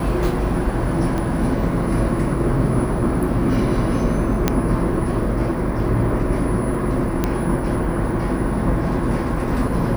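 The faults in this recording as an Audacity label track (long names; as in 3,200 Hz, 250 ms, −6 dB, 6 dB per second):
1.180000	1.180000	click −13 dBFS
4.480000	4.480000	click −2 dBFS
7.240000	7.240000	click −6 dBFS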